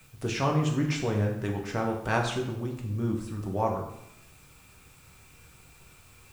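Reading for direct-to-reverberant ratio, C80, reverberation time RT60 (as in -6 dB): 0.0 dB, 8.5 dB, 0.80 s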